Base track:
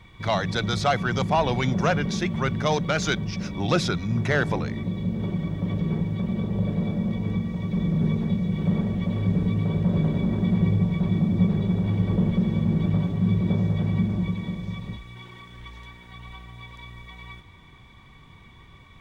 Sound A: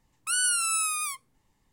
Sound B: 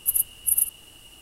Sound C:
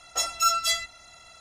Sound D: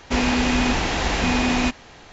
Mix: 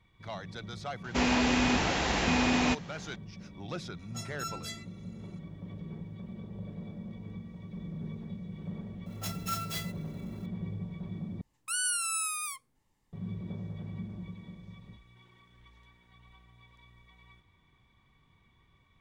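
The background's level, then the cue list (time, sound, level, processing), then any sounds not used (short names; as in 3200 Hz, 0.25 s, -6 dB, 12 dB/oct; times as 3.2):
base track -16.5 dB
1.04 add D -6 dB + HPF 64 Hz
3.99 add C -17 dB
9.06 add C -12.5 dB + clock jitter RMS 0.027 ms
11.41 replace with A -5.5 dB
not used: B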